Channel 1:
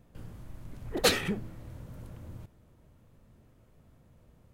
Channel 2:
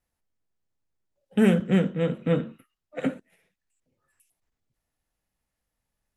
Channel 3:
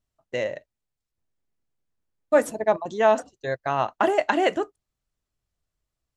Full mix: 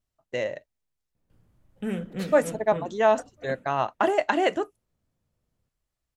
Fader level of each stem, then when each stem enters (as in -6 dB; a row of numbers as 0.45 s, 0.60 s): -18.0 dB, -11.0 dB, -1.5 dB; 1.15 s, 0.45 s, 0.00 s